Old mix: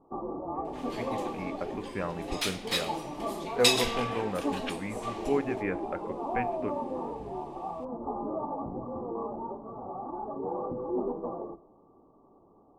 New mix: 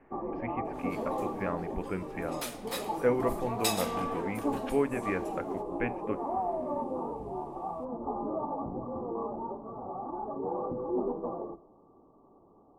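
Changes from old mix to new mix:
speech: entry −0.55 s
second sound: remove meter weighting curve D
master: add high-shelf EQ 11,000 Hz +6 dB

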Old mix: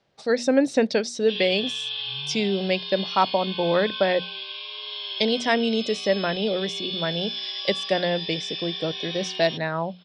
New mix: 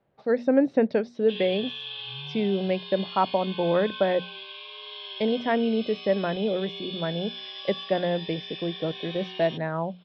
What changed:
speech: add parametric band 5,200 Hz −10 dB 2.5 octaves
master: add high-frequency loss of the air 300 metres

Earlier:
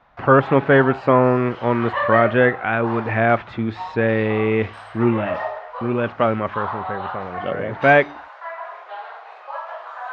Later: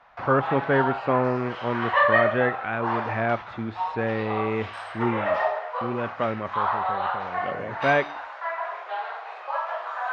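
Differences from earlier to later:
speech −8.0 dB
background: send on

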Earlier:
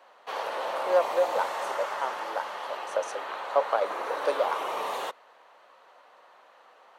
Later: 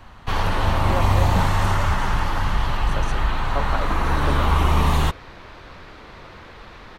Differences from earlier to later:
speech −9.0 dB
second sound: unmuted
master: remove four-pole ladder high-pass 460 Hz, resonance 55%

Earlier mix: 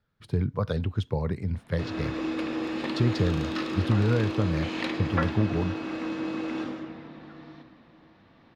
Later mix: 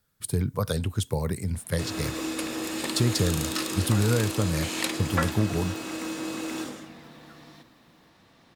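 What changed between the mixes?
first sound: send −9.0 dB
master: remove high-frequency loss of the air 260 metres

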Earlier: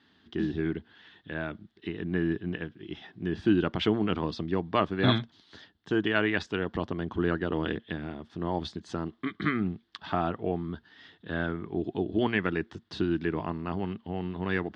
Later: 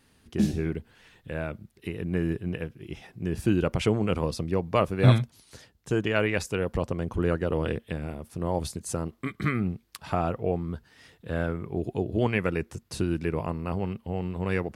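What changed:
background +10.5 dB
master: remove loudspeaker in its box 120–4,400 Hz, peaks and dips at 130 Hz −9 dB, 310 Hz +4 dB, 520 Hz −10 dB, 1,700 Hz +5 dB, 2,400 Hz −7 dB, 3,400 Hz +8 dB

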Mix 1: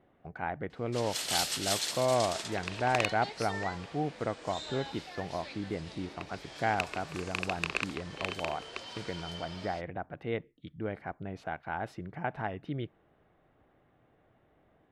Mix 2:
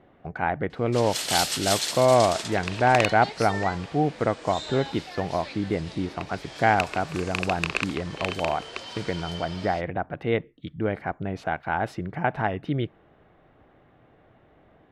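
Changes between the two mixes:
speech +9.5 dB
background +5.5 dB

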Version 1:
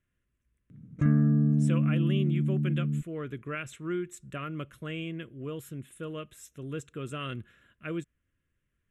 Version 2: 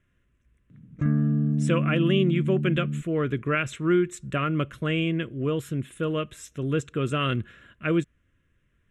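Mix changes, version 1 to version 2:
speech +11.0 dB
master: add high-frequency loss of the air 51 metres

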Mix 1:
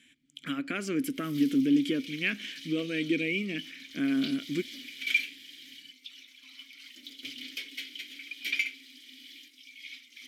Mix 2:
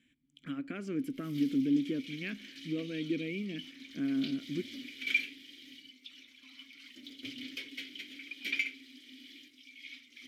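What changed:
speech −9.0 dB
master: add spectral tilt −2.5 dB per octave

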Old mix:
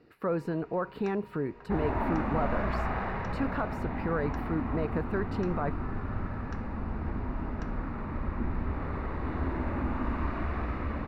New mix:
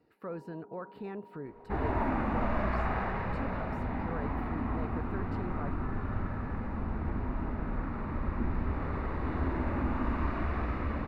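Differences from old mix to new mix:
speech −10.0 dB
first sound: add linear-phase brick-wall band-pass 170–1,000 Hz

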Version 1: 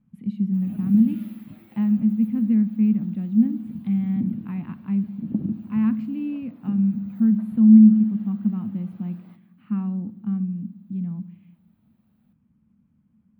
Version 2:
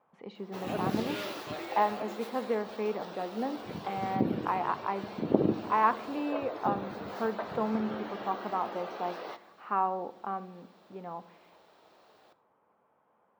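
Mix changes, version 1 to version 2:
speech: add resonant band-pass 840 Hz, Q 1.5
master: remove drawn EQ curve 130 Hz 0 dB, 220 Hz +8 dB, 420 Hz −24 dB, 2,600 Hz −17 dB, 6,100 Hz −28 dB, 11,000 Hz −3 dB

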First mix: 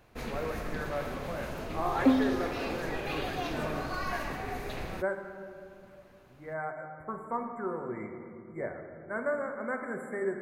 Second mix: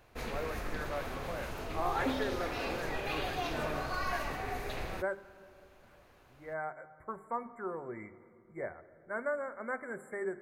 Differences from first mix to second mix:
speech: send −11.5 dB
second sound −9.0 dB
master: add parametric band 200 Hz −5.5 dB 1.4 octaves

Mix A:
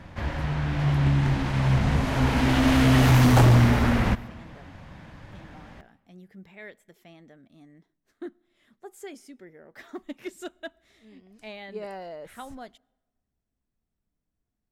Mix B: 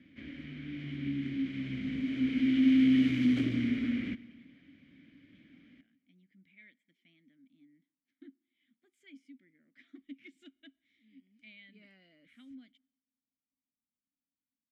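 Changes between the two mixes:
speech: add parametric band 420 Hz −15 dB 0.7 octaves
master: add formant filter i

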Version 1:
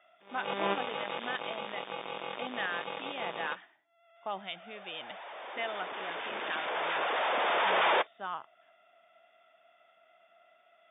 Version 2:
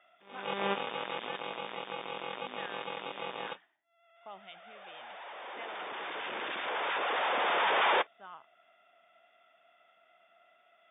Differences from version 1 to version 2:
speech −11.0 dB
background: add parametric band 640 Hz −4.5 dB 0.2 octaves

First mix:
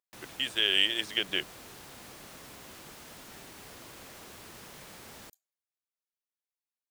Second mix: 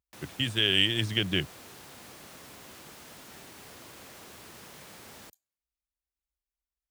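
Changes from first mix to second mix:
speech: remove Chebyshev high-pass filter 540 Hz, order 2
master: add high-pass filter 55 Hz

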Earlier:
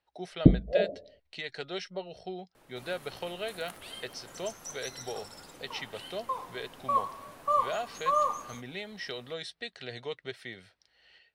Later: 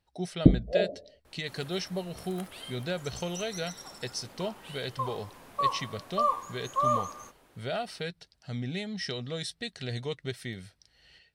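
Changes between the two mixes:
speech: remove three-way crossover with the lows and the highs turned down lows −14 dB, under 350 Hz, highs −12 dB, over 4,100 Hz
second sound: entry −1.30 s

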